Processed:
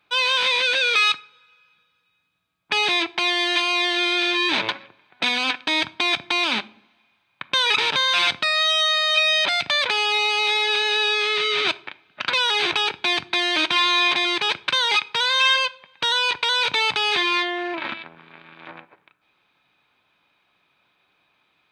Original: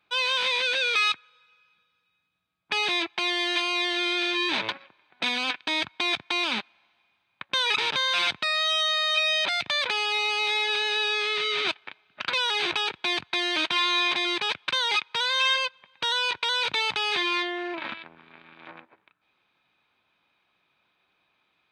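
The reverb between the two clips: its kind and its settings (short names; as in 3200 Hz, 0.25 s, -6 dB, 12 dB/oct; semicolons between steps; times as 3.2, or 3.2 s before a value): shoebox room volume 860 m³, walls furnished, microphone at 0.35 m; gain +5 dB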